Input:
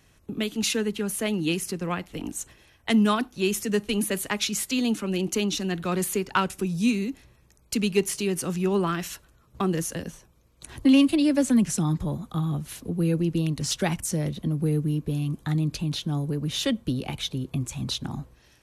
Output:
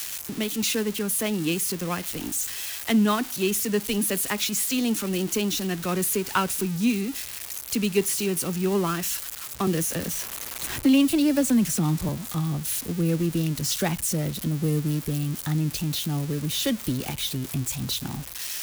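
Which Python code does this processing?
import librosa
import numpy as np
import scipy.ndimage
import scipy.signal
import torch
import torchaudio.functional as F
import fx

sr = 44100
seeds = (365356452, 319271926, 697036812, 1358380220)

y = x + 0.5 * 10.0 ** (-20.0 / 20.0) * np.diff(np.sign(x), prepend=np.sign(x[:1]))
y = fx.high_shelf(y, sr, hz=4700.0, db=-4.5)
y = fx.band_squash(y, sr, depth_pct=40, at=(9.67, 12.09))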